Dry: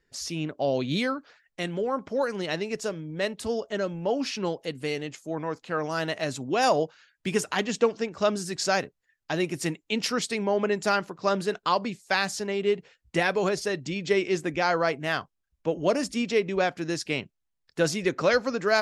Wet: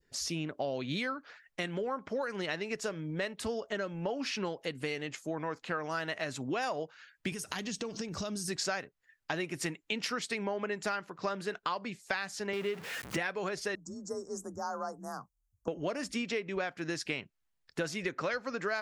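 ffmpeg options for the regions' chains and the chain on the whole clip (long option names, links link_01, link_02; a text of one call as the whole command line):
ffmpeg -i in.wav -filter_complex "[0:a]asettb=1/sr,asplit=3[link_01][link_02][link_03];[link_01]atrim=end=7.324[link_04];[link_02]atrim=start=7.32:end=8.48,asetpts=PTS-STARTPTS,afade=type=in:duration=0.004:curve=qsin,afade=type=out:start_time=1.156:duration=0.004:curve=qsin,bass=frequency=250:gain=10,treble=frequency=4000:gain=15,bandreject=frequency=7300:width=5.9,acompressor=threshold=-33dB:ratio=8:attack=3.2:release=140:knee=1:detection=peak[link_05];[link_03]atrim=start=8.476[link_06];[link_04][link_05]acrossfade=duration=0.004:curve1=hsin:curve2=qsin[link_07];[link_07][link_06]acrossfade=duration=0.004:curve1=qsin:curve2=hsin,asettb=1/sr,asplit=3[link_08][link_09][link_10];[link_08]atrim=end=12.534[link_11];[link_09]atrim=start=12.53:end=13.17,asetpts=PTS-STARTPTS,afade=type=in:duration=0.004:curve=qsin,afade=type=out:start_time=0.636:duration=0.004:curve=qsin,aeval=exprs='val(0)+0.5*0.0188*sgn(val(0))':channel_layout=same,highpass=frequency=100:width=0.5412,highpass=frequency=100:width=1.3066[link_12];[link_10]atrim=start=13.166[link_13];[link_11][link_12]acrossfade=duration=0.004:curve1=hsin:curve2=qsin[link_14];[link_14][link_13]acrossfade=duration=0.004:curve1=qsin:curve2=hsin,asettb=1/sr,asplit=3[link_15][link_16][link_17];[link_15]atrim=end=13.754[link_18];[link_16]atrim=start=13.75:end=15.68,asetpts=PTS-STARTPTS,afade=type=in:duration=0.004:curve=qsin,afade=type=out:start_time=1.926:duration=0.004:curve=qsin,asuperstop=centerf=2700:order=8:qfactor=0.55,equalizer=frequency=380:width=0.37:gain=-14.5,afreqshift=37[link_19];[link_17]atrim=start=15.676[link_20];[link_18][link_19]acrossfade=duration=0.004:curve1=hsin:curve2=qsin[link_21];[link_21][link_20]acrossfade=duration=0.004:curve1=qsin:curve2=hsin,adynamicequalizer=threshold=0.01:dfrequency=1700:dqfactor=0.78:tfrequency=1700:tqfactor=0.78:attack=5:release=100:ratio=0.375:range=3.5:mode=boostabove:tftype=bell,acompressor=threshold=-32dB:ratio=6" out.wav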